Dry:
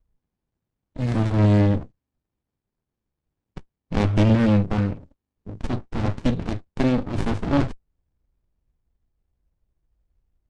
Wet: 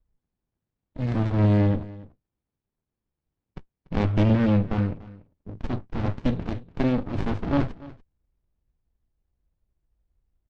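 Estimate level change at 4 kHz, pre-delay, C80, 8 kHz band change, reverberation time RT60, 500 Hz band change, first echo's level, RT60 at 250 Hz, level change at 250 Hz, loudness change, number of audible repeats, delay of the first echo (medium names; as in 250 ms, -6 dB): -5.5 dB, no reverb, no reverb, no reading, no reverb, -3.0 dB, -19.5 dB, no reverb, -2.5 dB, -2.5 dB, 1, 290 ms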